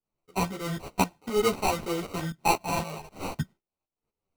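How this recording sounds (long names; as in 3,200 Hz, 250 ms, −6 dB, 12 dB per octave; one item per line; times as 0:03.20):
aliases and images of a low sample rate 1,700 Hz, jitter 0%
tremolo saw up 3.9 Hz, depth 80%
a shimmering, thickened sound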